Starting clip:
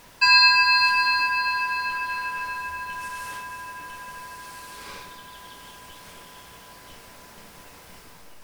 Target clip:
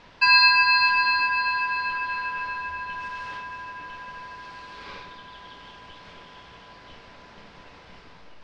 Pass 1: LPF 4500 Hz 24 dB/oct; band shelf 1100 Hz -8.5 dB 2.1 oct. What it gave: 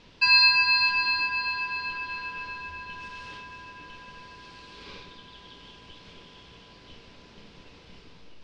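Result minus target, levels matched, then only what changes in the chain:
1000 Hz band -7.0 dB
remove: band shelf 1100 Hz -8.5 dB 2.1 oct

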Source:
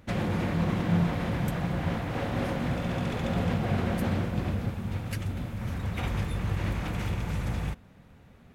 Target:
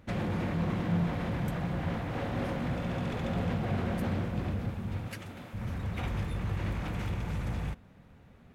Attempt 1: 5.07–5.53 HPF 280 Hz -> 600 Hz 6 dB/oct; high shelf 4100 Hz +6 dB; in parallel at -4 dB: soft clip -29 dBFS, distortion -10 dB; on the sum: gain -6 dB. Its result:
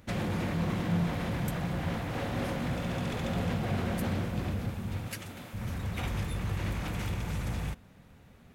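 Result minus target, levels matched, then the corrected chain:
8000 Hz band +8.0 dB
5.07–5.53 HPF 280 Hz -> 600 Hz 6 dB/oct; high shelf 4100 Hz -4.5 dB; in parallel at -4 dB: soft clip -29 dBFS, distortion -10 dB; on the sum: gain -6 dB

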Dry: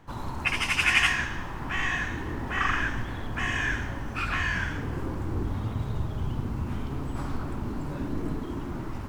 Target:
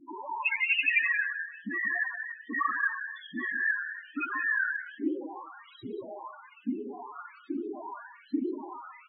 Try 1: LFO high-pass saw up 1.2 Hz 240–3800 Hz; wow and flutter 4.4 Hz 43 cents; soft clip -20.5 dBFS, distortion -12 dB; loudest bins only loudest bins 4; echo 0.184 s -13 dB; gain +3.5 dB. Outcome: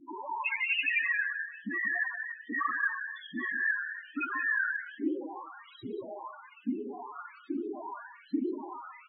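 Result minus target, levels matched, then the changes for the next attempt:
soft clip: distortion +11 dB
change: soft clip -11 dBFS, distortion -24 dB

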